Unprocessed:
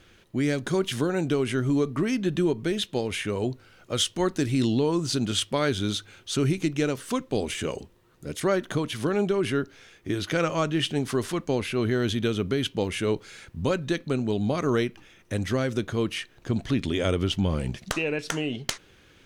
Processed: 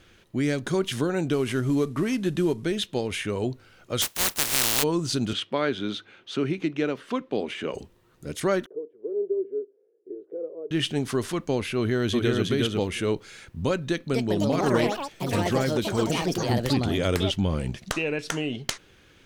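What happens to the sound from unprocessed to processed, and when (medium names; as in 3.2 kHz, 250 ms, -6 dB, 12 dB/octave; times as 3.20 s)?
1.33–2.65 s: CVSD coder 64 kbps
4.01–4.82 s: spectral contrast reduction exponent 0.11
5.33–7.74 s: three-band isolator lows -21 dB, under 160 Hz, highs -20 dB, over 4 kHz
8.66–10.71 s: Butterworth band-pass 430 Hz, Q 3.7
11.77–12.43 s: echo throw 360 ms, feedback 10%, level -2 dB
13.86–18.11 s: ever faster or slower copies 264 ms, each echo +5 st, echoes 3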